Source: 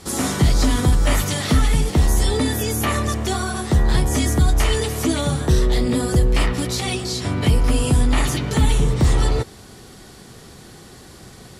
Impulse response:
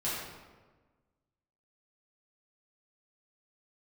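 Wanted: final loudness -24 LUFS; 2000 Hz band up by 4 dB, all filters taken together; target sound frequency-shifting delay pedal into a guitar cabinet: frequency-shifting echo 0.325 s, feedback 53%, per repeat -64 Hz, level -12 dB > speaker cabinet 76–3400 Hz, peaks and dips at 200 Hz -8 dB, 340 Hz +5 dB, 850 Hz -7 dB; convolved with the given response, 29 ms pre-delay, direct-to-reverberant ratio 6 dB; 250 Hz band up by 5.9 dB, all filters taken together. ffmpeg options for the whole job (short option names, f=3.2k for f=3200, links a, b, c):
-filter_complex "[0:a]equalizer=f=250:t=o:g=8,equalizer=f=2k:t=o:g=5,asplit=2[a][b];[1:a]atrim=start_sample=2205,adelay=29[c];[b][c]afir=irnorm=-1:irlink=0,volume=-12.5dB[d];[a][d]amix=inputs=2:normalize=0,asplit=7[e][f][g][h][i][j][k];[f]adelay=325,afreqshift=-64,volume=-12dB[l];[g]adelay=650,afreqshift=-128,volume=-17.5dB[m];[h]adelay=975,afreqshift=-192,volume=-23dB[n];[i]adelay=1300,afreqshift=-256,volume=-28.5dB[o];[j]adelay=1625,afreqshift=-320,volume=-34.1dB[p];[k]adelay=1950,afreqshift=-384,volume=-39.6dB[q];[e][l][m][n][o][p][q]amix=inputs=7:normalize=0,highpass=76,equalizer=f=200:t=q:w=4:g=-8,equalizer=f=340:t=q:w=4:g=5,equalizer=f=850:t=q:w=4:g=-7,lowpass=f=3.4k:w=0.5412,lowpass=f=3.4k:w=1.3066,volume=-6.5dB"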